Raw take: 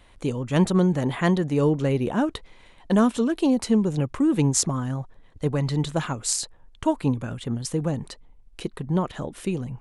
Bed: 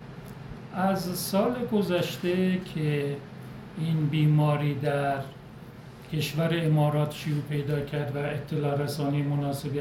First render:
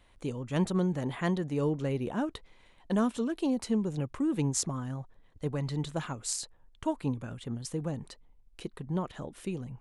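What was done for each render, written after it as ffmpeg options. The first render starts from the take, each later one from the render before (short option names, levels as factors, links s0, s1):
-af "volume=0.376"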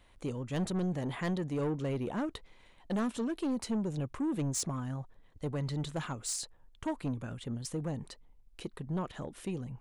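-af "asoftclip=type=tanh:threshold=0.0422"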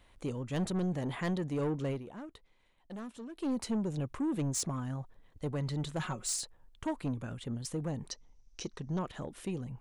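-filter_complex "[0:a]asettb=1/sr,asplit=3[s0][s1][s2];[s0]atrim=end=5.994[s3];[s1]atrim=start=5.99:end=6.41,asetpts=PTS-STARTPTS,afade=t=in:d=0.004:c=qsin,afade=t=out:st=0.416:d=0.004:c=qsin,aecho=1:1:5.4:0.65,atrim=end_sample=18522[s4];[s2]atrim=start=6.406[s5];[s3][s4]acrossfade=d=0.004:c1=hsin:c2=qsin[s6];[s6][s5]acrossfade=d=0.004:c1=qsin:c2=hsin,asettb=1/sr,asplit=3[s7][s8][s9];[s7]atrim=end=8.114[s10];[s8]atrim=start=8.11:end=8.99,asetpts=PTS-STARTPTS,afade=t=in:d=0.004:c=qsin,afade=t=out:st=0.876:d=0.004:c=qsin,lowpass=f=5900:t=q:w=10[s11];[s9]atrim=start=8.986[s12];[s10][s11]acrossfade=d=0.004:c1=hsin:c2=qsin[s13];[s13][s12]acrossfade=d=0.004:c1=qsin:c2=hsin,asplit=3[s14][s15][s16];[s14]atrim=end=2.03,asetpts=PTS-STARTPTS,afade=t=out:st=1.9:d=0.13:silence=0.281838[s17];[s15]atrim=start=2.03:end=3.35,asetpts=PTS-STARTPTS,volume=0.282[s18];[s16]atrim=start=3.35,asetpts=PTS-STARTPTS,afade=t=in:d=0.13:silence=0.281838[s19];[s17][s18][s19]concat=n=3:v=0:a=1"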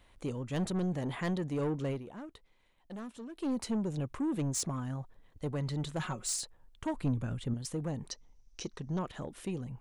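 -filter_complex "[0:a]asettb=1/sr,asplit=3[s0][s1][s2];[s0]atrim=end=6.944[s3];[s1]atrim=start=6.94:end=7.54,asetpts=PTS-STARTPTS,afade=t=in:d=0.004:c=qsin,afade=t=out:st=0.596:d=0.004:c=qsin,lowshelf=f=170:g=9[s4];[s2]atrim=start=7.536[s5];[s3][s4]acrossfade=d=0.004:c1=hsin:c2=qsin[s6];[s6][s5]acrossfade=d=0.004:c1=qsin:c2=hsin"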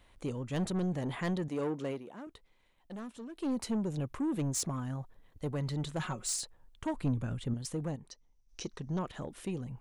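-filter_complex "[0:a]asettb=1/sr,asplit=3[s0][s1][s2];[s0]atrim=end=1.484[s3];[s1]atrim=start=1.48:end=2.27,asetpts=PTS-STARTPTS,afade=t=in:d=0.004:c=qsin,afade=t=out:st=0.786:d=0.004:c=qsin,highpass=210[s4];[s2]atrim=start=2.266[s5];[s3][s4]acrossfade=d=0.004:c1=hsin:c2=qsin[s6];[s6][s5]acrossfade=d=0.004:c1=qsin:c2=hsin,asettb=1/sr,asplit=3[s7][s8][s9];[s7]atrim=end=3.624[s10];[s8]atrim=start=3.62:end=5.74,asetpts=PTS-STARTPTS,afade=t=in:d=0.004:c=qsin,afade=t=out:st=2.116:d=0.004:c=qsin,equalizer=f=12000:w=5.4:g=8.5[s11];[s9]atrim=start=5.736[s12];[s10][s11]acrossfade=d=0.004:c1=hsin:c2=qsin[s13];[s13][s12]acrossfade=d=0.004:c1=qsin:c2=hsin,asplit=3[s14][s15][s16];[s14]atrim=end=7.96,asetpts=PTS-STARTPTS,afade=t=out:st=7.82:d=0.14:c=log:silence=0.354813[s17];[s15]atrim=start=7.96:end=8.49,asetpts=PTS-STARTPTS,volume=0.355[s18];[s16]atrim=start=8.49,asetpts=PTS-STARTPTS,afade=t=in:d=0.14:c=log:silence=0.354813[s19];[s17][s18][s19]concat=n=3:v=0:a=1"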